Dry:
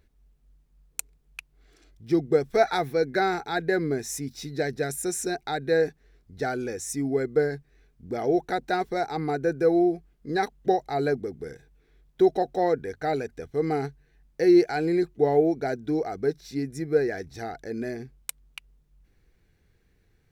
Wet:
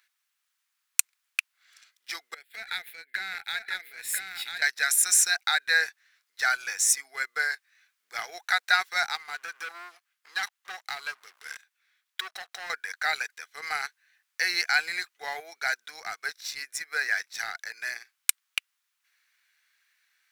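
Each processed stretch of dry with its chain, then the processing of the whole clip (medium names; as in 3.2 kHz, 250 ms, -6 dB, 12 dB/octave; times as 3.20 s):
2.34–4.62 s: compression 8:1, threshold -29 dBFS + static phaser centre 2.6 kHz, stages 4 + delay 993 ms -4 dB
9.15–12.70 s: waveshaping leveller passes 2 + compression 3:1, threshold -35 dBFS
whole clip: high-pass 1.3 kHz 24 dB/octave; waveshaping leveller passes 1; trim +8.5 dB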